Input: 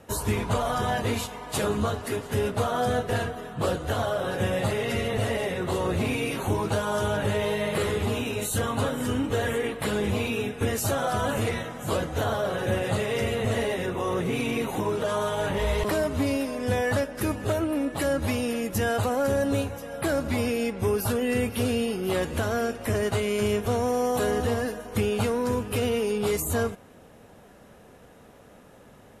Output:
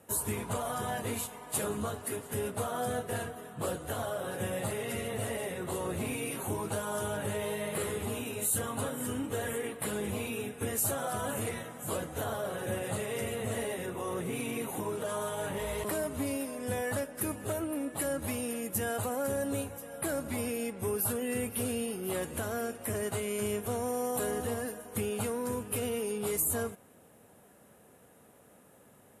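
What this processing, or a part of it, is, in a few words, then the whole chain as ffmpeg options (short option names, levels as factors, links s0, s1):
budget condenser microphone: -af "highpass=92,highshelf=f=7100:t=q:w=1.5:g=9,volume=0.398"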